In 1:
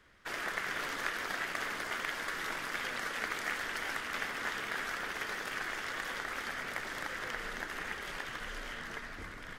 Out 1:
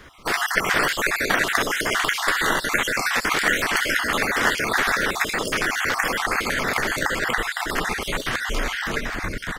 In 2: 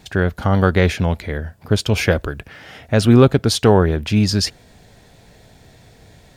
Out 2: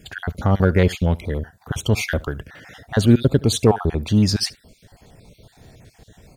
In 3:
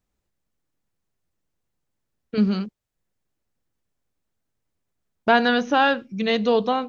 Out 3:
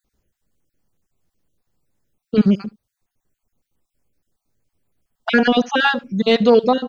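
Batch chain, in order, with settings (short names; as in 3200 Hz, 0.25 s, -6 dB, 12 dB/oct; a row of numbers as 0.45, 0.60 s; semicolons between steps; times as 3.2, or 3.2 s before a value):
random spectral dropouts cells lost 36%; bell 2000 Hz -4 dB 3 oct; in parallel at -9 dB: soft clip -19 dBFS; on the sum: echo 71 ms -23 dB; normalise peaks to -3 dBFS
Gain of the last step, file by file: +18.0, -1.5, +7.0 dB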